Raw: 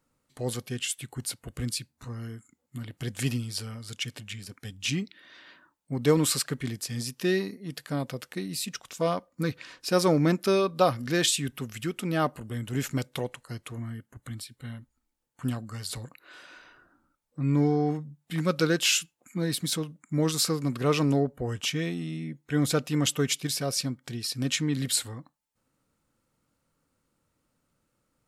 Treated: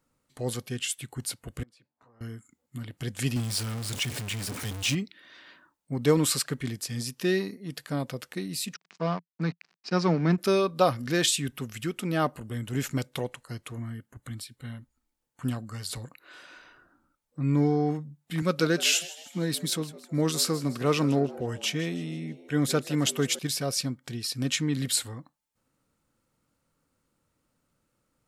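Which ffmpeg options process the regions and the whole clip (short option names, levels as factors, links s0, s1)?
-filter_complex "[0:a]asettb=1/sr,asplit=3[s0][s1][s2];[s0]atrim=end=1.634[s3];[s1]atrim=start=1.63:end=2.21,asetpts=PTS-STARTPTS,afade=t=in:d=0.004:c=qsin,afade=t=out:st=0.576:d=0.004:c=qsin,bandpass=f=730:t=q:w=1.5,acompressor=threshold=0.00141:ratio=8:attack=3.2:release=140:knee=1:detection=peak[s4];[s2]atrim=start=2.206[s5];[s3][s4]acrossfade=d=0.004:c1=hsin:c2=qsin[s6];[s6][s5]acrossfade=d=0.004:c1=qsin:c2=hsin,asettb=1/sr,asplit=3[s7][s8][s9];[s7]atrim=end=3.364[s10];[s8]atrim=start=3.36:end=4.95,asetpts=PTS-STARTPTS,afade=t=in:d=0.004:c=qsin,afade=t=out:st=1.586:d=0.004:c=qsin,aeval=exprs='val(0)+0.5*0.0266*sgn(val(0))':c=same,highpass=47,equalizer=f=8900:w=2:g=3[s11];[s9]atrim=start=4.946[s12];[s10][s11]acrossfade=d=0.004:c1=hsin:c2=qsin[s13];[s13][s12]acrossfade=d=0.004:c1=qsin:c2=hsin,asettb=1/sr,asplit=3[s14][s15][s16];[s14]atrim=end=8.744[s17];[s15]atrim=start=8.74:end=10.38,asetpts=PTS-STARTPTS,afade=t=in:d=0.004:c=qsin,afade=t=out:st=1.636:d=0.004:c=qsin,aeval=exprs='sgn(val(0))*max(abs(val(0))-0.01,0)':c=same,highpass=f=160:w=0.5412,highpass=f=160:w=1.3066,equalizer=f=170:t=q:w=4:g=7,equalizer=f=290:t=q:w=4:g=-5,equalizer=f=540:t=q:w=4:g=-7,equalizer=f=3400:t=q:w=4:g=-7,lowpass=f=5100:w=0.5412,lowpass=f=5100:w=1.3066[s18];[s16]atrim=start=10.376[s19];[s17][s18]acrossfade=d=0.004:c1=hsin:c2=qsin[s20];[s20][s19]acrossfade=d=0.004:c1=qsin:c2=hsin,asettb=1/sr,asplit=3[s21][s22][s23];[s21]atrim=end=18.424[s24];[s22]atrim=start=18.42:end=23.39,asetpts=PTS-STARTPTS,afade=t=in:d=0.004:c=qsin,afade=t=out:st=4.966:d=0.004:c=qsin,highpass=110,asplit=5[s25][s26][s27][s28][s29];[s26]adelay=159,afreqshift=97,volume=0.133[s30];[s27]adelay=318,afreqshift=194,volume=0.0589[s31];[s28]adelay=477,afreqshift=291,volume=0.0257[s32];[s29]adelay=636,afreqshift=388,volume=0.0114[s33];[s25][s30][s31][s32][s33]amix=inputs=5:normalize=0,atrim=end_sample=219177[s34];[s23]atrim=start=23.386[s35];[s24][s34]acrossfade=d=0.004:c1=hsin:c2=qsin[s36];[s36][s35]acrossfade=d=0.004:c1=qsin:c2=hsin"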